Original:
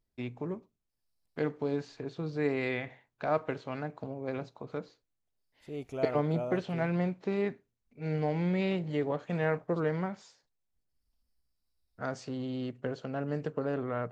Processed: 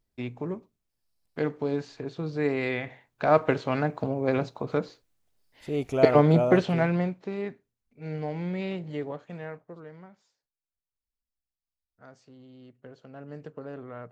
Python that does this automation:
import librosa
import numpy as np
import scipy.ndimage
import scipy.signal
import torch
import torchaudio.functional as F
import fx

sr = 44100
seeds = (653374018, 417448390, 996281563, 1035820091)

y = fx.gain(x, sr, db=fx.line((2.8, 3.5), (3.5, 10.5), (6.62, 10.5), (7.3, -2.0), (9.01, -2.0), (9.84, -15.0), (12.57, -15.0), (13.41, -7.0)))